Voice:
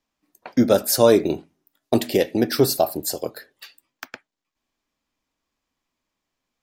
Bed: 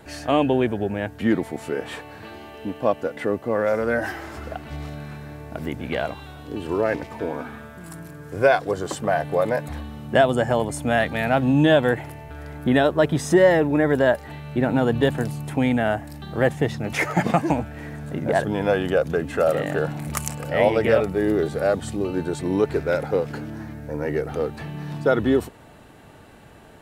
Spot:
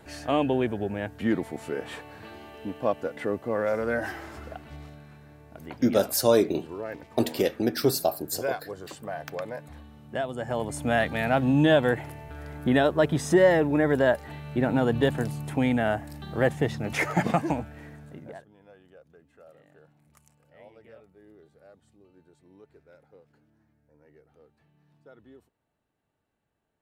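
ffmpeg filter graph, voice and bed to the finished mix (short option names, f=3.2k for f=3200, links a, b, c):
-filter_complex "[0:a]adelay=5250,volume=-5.5dB[a];[1:a]volume=5dB,afade=t=out:st=4.17:d=0.86:silence=0.375837,afade=t=in:st=10.36:d=0.48:silence=0.316228,afade=t=out:st=17.2:d=1.25:silence=0.0334965[b];[a][b]amix=inputs=2:normalize=0"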